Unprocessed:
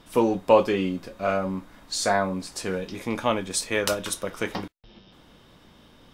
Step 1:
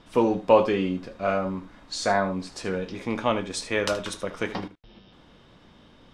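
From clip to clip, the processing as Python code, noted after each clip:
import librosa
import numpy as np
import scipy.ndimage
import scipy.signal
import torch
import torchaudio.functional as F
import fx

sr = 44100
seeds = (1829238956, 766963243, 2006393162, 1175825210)

y = fx.air_absorb(x, sr, metres=73.0)
y = y + 10.0 ** (-14.0 / 20.0) * np.pad(y, (int(76 * sr / 1000.0), 0))[:len(y)]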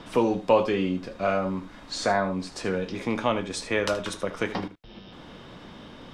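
y = fx.band_squash(x, sr, depth_pct=40)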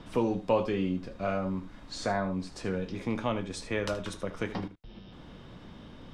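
y = fx.low_shelf(x, sr, hz=190.0, db=10.5)
y = y * 10.0 ** (-7.5 / 20.0)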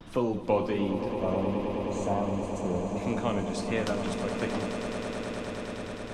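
y = fx.vibrato(x, sr, rate_hz=1.4, depth_cents=90.0)
y = fx.spec_box(y, sr, start_s=1.14, length_s=1.83, low_hz=1200.0, high_hz=5800.0, gain_db=-16)
y = fx.echo_swell(y, sr, ms=105, loudest=8, wet_db=-11.5)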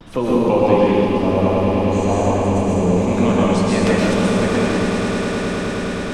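y = fx.rev_plate(x, sr, seeds[0], rt60_s=2.1, hf_ratio=0.8, predelay_ms=105, drr_db=-6.0)
y = y * 10.0 ** (6.5 / 20.0)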